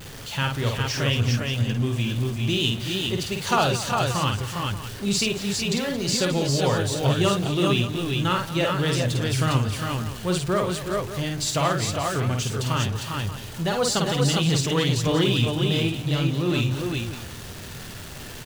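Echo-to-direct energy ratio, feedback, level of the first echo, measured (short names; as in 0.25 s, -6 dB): 0.0 dB, no steady repeat, -4.5 dB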